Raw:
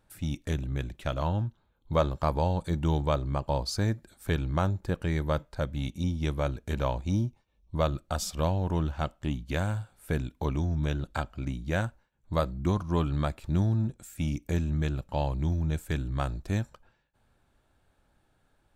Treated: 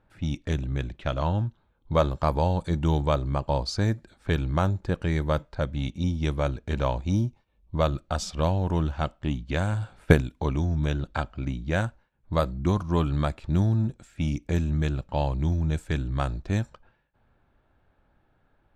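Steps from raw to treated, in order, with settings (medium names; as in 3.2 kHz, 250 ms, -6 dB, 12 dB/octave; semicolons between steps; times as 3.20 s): 9.72–10.21 s: transient shaper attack +12 dB, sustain +8 dB; level-controlled noise filter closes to 2.4 kHz, open at -21.5 dBFS; trim +3 dB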